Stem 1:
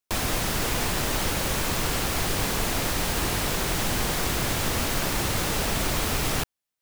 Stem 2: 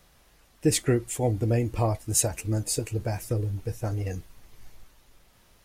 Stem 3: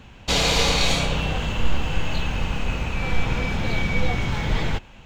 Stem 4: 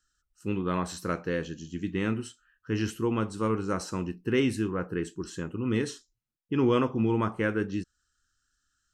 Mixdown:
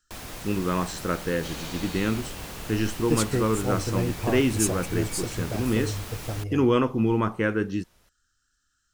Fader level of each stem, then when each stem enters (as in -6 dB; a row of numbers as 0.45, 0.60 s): -12.5, -3.0, -19.5, +3.0 dB; 0.00, 2.45, 1.15, 0.00 s